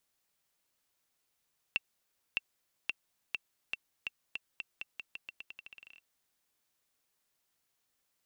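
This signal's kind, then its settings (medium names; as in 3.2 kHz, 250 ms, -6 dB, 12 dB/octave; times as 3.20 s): bouncing ball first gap 0.61 s, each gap 0.86, 2.7 kHz, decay 27 ms -16 dBFS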